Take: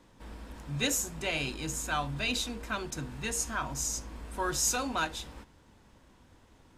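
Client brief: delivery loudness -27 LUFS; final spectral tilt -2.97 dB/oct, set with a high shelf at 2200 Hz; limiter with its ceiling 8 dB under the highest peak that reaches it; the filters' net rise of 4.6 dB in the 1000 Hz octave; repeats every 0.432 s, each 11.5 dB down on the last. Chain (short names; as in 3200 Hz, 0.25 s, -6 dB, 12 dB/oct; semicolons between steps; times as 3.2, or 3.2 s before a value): bell 1000 Hz +4.5 dB; high shelf 2200 Hz +6 dB; limiter -19.5 dBFS; feedback echo 0.432 s, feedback 27%, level -11.5 dB; gain +3 dB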